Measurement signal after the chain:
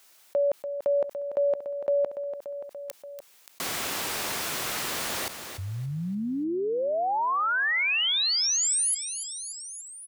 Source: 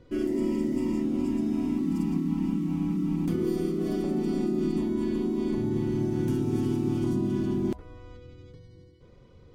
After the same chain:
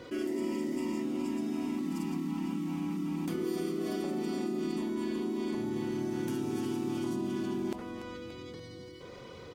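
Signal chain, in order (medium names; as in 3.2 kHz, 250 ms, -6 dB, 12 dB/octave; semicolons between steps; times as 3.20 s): high-pass 640 Hz 6 dB/octave; feedback delay 289 ms, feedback 51%, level -18.5 dB; level flattener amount 50%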